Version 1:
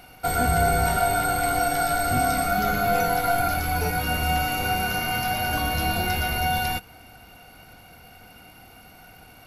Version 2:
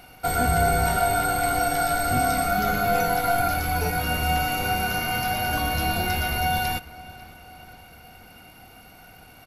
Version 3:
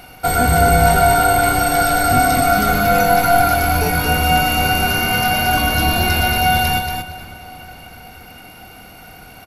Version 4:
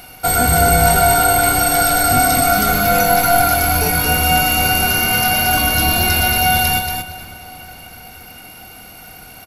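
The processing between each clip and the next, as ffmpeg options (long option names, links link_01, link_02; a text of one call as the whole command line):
ffmpeg -i in.wav -filter_complex "[0:a]asplit=2[link_01][link_02];[link_02]adelay=544,lowpass=frequency=4400:poles=1,volume=-19.5dB,asplit=2[link_03][link_04];[link_04]adelay=544,lowpass=frequency=4400:poles=1,volume=0.51,asplit=2[link_05][link_06];[link_06]adelay=544,lowpass=frequency=4400:poles=1,volume=0.51,asplit=2[link_07][link_08];[link_08]adelay=544,lowpass=frequency=4400:poles=1,volume=0.51[link_09];[link_01][link_03][link_05][link_07][link_09]amix=inputs=5:normalize=0" out.wav
ffmpeg -i in.wav -af "acontrast=54,aecho=1:1:232|464|696:0.531|0.0956|0.0172,volume=1.5dB" out.wav
ffmpeg -i in.wav -af "highshelf=frequency=4100:gain=8.5,volume=-1dB" out.wav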